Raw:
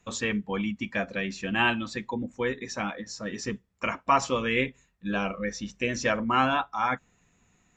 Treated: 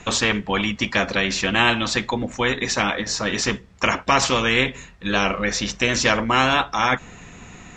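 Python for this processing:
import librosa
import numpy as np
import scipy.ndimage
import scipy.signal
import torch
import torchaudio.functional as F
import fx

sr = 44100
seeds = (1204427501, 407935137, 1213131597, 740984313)

y = scipy.signal.sosfilt(scipy.signal.butter(2, 5800.0, 'lowpass', fs=sr, output='sos'), x)
y = fx.spectral_comp(y, sr, ratio=2.0)
y = y * librosa.db_to_amplitude(7.5)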